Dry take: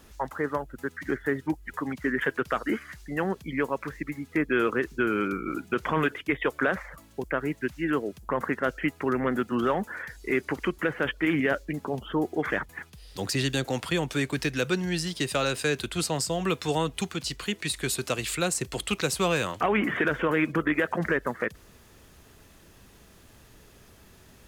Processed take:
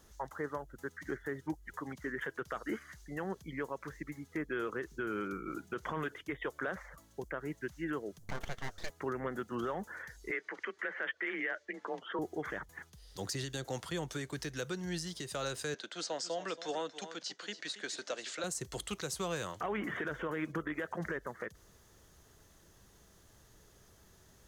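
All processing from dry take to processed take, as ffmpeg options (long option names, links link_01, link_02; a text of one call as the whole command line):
ffmpeg -i in.wav -filter_complex "[0:a]asettb=1/sr,asplit=3[link_01][link_02][link_03];[link_01]atrim=end=8.194[link_04];[link_02]atrim=start=8.19:end=8.9,asetpts=PTS-STARTPTS,afade=type=in:duration=0.004:curve=qsin,afade=type=out:start_time=0.706:duration=0.004:curve=qsin,aecho=1:1:4.4:0.4,atrim=end_sample=31311,aeval=exprs='abs(val(0))':channel_layout=same[link_05];[link_03]atrim=start=8.896[link_06];[link_04][link_05]acrossfade=duration=0.004:curve1=hsin:curve2=qsin[link_07];[link_07][link_06]acrossfade=duration=0.004:curve1=qsin:curve2=hsin,asettb=1/sr,asplit=3[link_08][link_09][link_10];[link_08]atrim=end=10.314[link_11];[link_09]atrim=start=10.31:end=12.19,asetpts=PTS-STARTPTS,afade=type=in:duration=0.004:curve=qsin,afade=type=out:start_time=1.876:duration=0.004:curve=qsin,highpass=290,lowpass=5000,equalizer=frequency=1900:width=1.3:gain=12,afreqshift=33[link_12];[link_10]atrim=start=12.186[link_13];[link_11][link_12]acrossfade=duration=0.004:curve1=hsin:curve2=qsin[link_14];[link_14][link_13]acrossfade=duration=0.004:curve1=qsin:curve2=hsin,asettb=1/sr,asplit=3[link_15][link_16][link_17];[link_15]atrim=end=15.744[link_18];[link_16]atrim=start=15.74:end=18.44,asetpts=PTS-STARTPTS,afade=type=in:duration=0.004:curve=qsin,afade=type=out:start_time=2.696:duration=0.004:curve=qsin,highpass=frequency=260:width=0.5412,highpass=frequency=260:width=1.3066,equalizer=frequency=380:width_type=q:width=4:gain=-7,equalizer=frequency=570:width_type=q:width=4:gain=5,equalizer=frequency=1100:width_type=q:width=4:gain=-4,equalizer=frequency=1600:width_type=q:width=4:gain=4,lowpass=frequency=6300:width=0.5412,lowpass=frequency=6300:width=1.3066,aecho=1:1:278:0.211,atrim=end_sample=119070[link_19];[link_17]atrim=start=18.436[link_20];[link_18][link_19]acrossfade=duration=0.004:curve1=hsin:curve2=qsin[link_21];[link_21][link_20]acrossfade=duration=0.004:curve1=qsin:curve2=hsin,equalizer=frequency=250:width_type=o:width=0.33:gain=-6,equalizer=frequency=2500:width_type=o:width=0.33:gain=-8,equalizer=frequency=6300:width_type=o:width=0.33:gain=6,alimiter=limit=-19dB:level=0:latency=1:release=163,volume=-8dB" out.wav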